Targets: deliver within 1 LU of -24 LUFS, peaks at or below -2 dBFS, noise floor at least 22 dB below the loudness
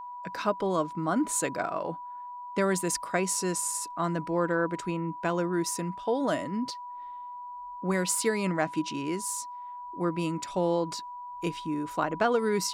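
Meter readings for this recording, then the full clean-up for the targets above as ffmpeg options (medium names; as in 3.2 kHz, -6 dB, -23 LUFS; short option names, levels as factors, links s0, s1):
steady tone 980 Hz; tone level -38 dBFS; loudness -29.5 LUFS; peak level -11.5 dBFS; loudness target -24.0 LUFS
-> -af "bandreject=f=980:w=30"
-af "volume=1.88"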